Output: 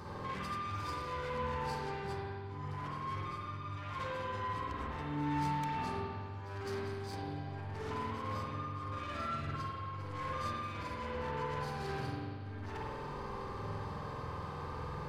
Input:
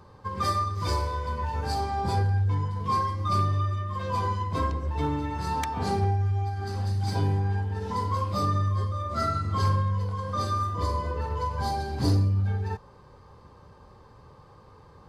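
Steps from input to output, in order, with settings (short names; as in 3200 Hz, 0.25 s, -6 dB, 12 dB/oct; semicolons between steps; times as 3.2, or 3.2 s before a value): low shelf 110 Hz -6.5 dB; negative-ratio compressor -38 dBFS, ratio -1; soft clip -39 dBFS, distortion -9 dB; bell 610 Hz -3.5 dB 1.3 oct; reverb RT60 1.9 s, pre-delay 48 ms, DRR -5 dB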